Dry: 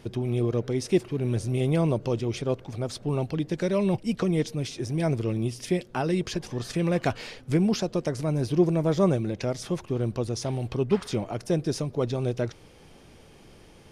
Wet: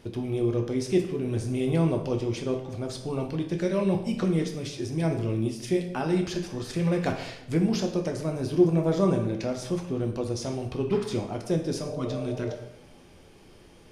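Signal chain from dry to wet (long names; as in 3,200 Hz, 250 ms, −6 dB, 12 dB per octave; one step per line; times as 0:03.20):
healed spectral selection 0:11.88–0:12.52, 370–960 Hz before
dense smooth reverb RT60 0.81 s, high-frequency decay 0.75×, DRR 3 dB
level −3 dB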